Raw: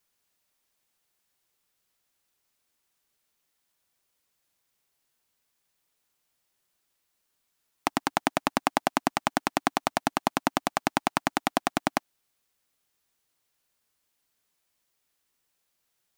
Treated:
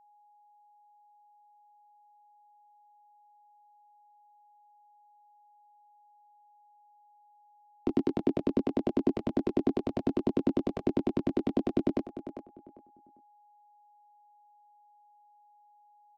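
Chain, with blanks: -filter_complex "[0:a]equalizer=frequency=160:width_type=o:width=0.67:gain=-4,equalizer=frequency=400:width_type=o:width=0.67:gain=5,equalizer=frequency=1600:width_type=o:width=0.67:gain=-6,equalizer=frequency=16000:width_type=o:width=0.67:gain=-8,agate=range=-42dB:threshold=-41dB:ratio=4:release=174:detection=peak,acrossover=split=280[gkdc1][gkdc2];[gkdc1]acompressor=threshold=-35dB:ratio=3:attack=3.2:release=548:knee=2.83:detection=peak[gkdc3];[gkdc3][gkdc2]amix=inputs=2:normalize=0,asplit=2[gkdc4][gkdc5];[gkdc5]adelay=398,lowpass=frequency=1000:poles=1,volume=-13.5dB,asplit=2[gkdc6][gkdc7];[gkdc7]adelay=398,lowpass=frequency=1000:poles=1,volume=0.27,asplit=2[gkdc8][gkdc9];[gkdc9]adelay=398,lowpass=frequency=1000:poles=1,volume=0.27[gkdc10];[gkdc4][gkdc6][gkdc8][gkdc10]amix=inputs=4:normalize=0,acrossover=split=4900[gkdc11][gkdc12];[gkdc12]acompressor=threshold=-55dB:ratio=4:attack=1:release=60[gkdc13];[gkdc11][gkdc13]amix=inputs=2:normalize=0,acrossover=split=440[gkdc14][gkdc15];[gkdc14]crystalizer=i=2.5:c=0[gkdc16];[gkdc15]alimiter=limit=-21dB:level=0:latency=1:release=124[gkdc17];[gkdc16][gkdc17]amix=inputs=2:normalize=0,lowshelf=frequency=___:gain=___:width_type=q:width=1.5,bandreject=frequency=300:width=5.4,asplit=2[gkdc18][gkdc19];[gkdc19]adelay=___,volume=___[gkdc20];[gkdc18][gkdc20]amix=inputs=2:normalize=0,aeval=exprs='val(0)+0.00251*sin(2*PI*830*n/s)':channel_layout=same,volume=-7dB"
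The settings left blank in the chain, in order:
560, 14, 22, -4.5dB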